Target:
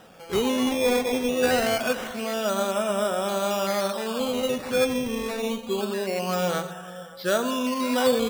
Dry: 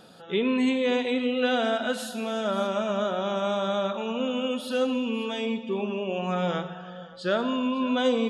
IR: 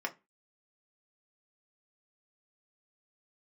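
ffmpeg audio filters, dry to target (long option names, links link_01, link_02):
-filter_complex "[0:a]acrusher=samples=10:mix=1:aa=0.000001:lfo=1:lforange=10:lforate=0.25,asplit=2[link_01][link_02];[1:a]atrim=start_sample=2205,asetrate=70560,aresample=44100[link_03];[link_02][link_03]afir=irnorm=-1:irlink=0,volume=-5dB[link_04];[link_01][link_04]amix=inputs=2:normalize=0"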